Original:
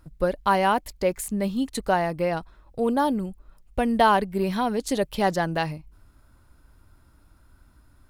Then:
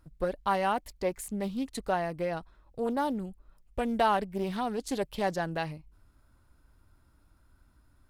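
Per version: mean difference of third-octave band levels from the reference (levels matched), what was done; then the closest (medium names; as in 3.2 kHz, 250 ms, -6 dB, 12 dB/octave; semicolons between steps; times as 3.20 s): 1.5 dB: loudspeaker Doppler distortion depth 0.22 ms; trim -7 dB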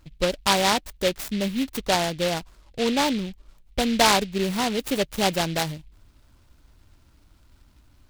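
7.5 dB: delay time shaken by noise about 2.9 kHz, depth 0.13 ms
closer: first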